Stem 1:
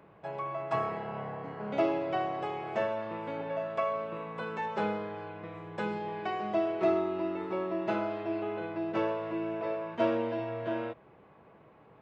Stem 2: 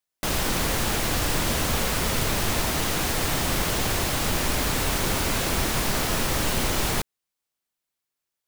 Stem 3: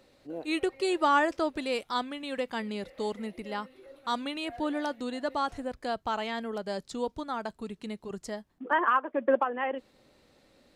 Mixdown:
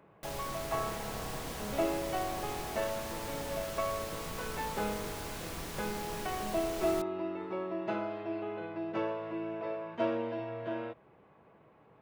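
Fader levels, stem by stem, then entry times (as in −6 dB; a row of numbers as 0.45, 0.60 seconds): −3.5 dB, −17.5 dB, muted; 0.00 s, 0.00 s, muted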